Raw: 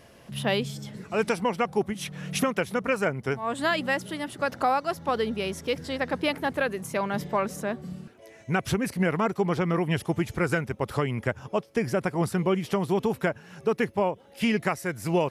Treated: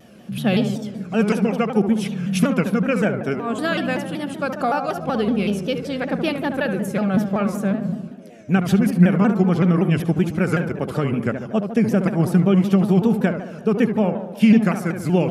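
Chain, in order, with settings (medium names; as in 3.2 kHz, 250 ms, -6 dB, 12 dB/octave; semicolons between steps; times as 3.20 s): comb of notches 980 Hz; small resonant body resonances 200/2900 Hz, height 13 dB, ringing for 45 ms; tape echo 72 ms, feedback 75%, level -5 dB, low-pass 1.6 kHz; vibrato with a chosen wave saw down 5.3 Hz, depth 160 cents; trim +2 dB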